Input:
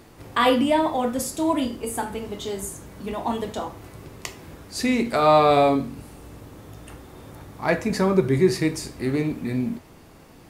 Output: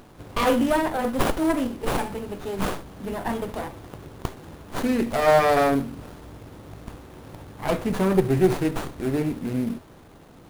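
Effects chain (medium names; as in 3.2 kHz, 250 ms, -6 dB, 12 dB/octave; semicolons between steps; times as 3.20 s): resonant high shelf 8 kHz +10.5 dB, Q 3; in parallel at -10.5 dB: companded quantiser 4-bit; on the sum: sliding maximum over 17 samples; trim -2.5 dB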